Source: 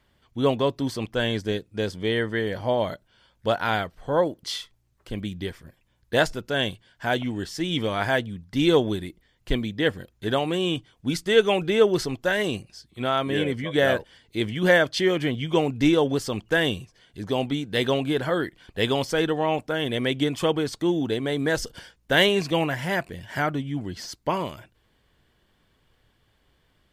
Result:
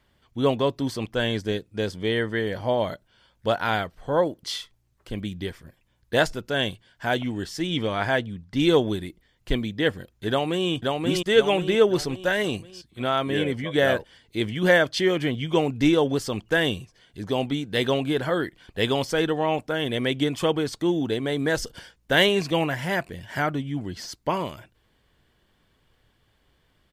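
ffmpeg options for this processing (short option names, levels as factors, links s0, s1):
-filter_complex "[0:a]asettb=1/sr,asplit=3[s0][s1][s2];[s0]atrim=end=7.674[s3];[s1]atrim=start=7.67:end=8.6,asetpts=PTS-STARTPTS,afade=t=in:d=0.004:c=qsin,afade=t=out:st=0.926:d=0.004:c=qsin,highshelf=f=9400:g=-10[s4];[s2]atrim=start=8.596[s5];[s3][s4]acrossfade=d=0.004:c1=hsin:c2=qsin[s6];[s6][s5]acrossfade=d=0.004:c1=qsin:c2=hsin,asplit=2[s7][s8];[s8]afade=t=in:st=10.29:d=0.01,afade=t=out:st=10.69:d=0.01,aecho=0:1:530|1060|1590|2120|2650|3180:0.794328|0.357448|0.160851|0.0723832|0.0325724|0.0146576[s9];[s7][s9]amix=inputs=2:normalize=0"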